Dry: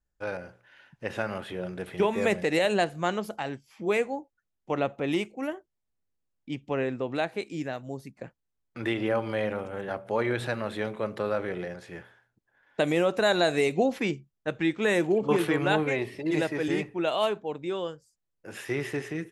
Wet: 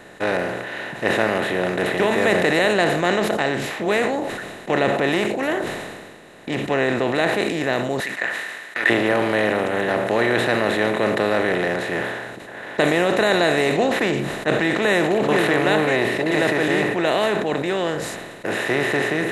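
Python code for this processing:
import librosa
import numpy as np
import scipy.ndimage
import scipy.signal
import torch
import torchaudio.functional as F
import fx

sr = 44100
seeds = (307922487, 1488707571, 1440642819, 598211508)

y = fx.highpass_res(x, sr, hz=1800.0, q=10.0, at=(8.0, 8.9))
y = fx.bin_compress(y, sr, power=0.4)
y = fx.sustainer(y, sr, db_per_s=35.0)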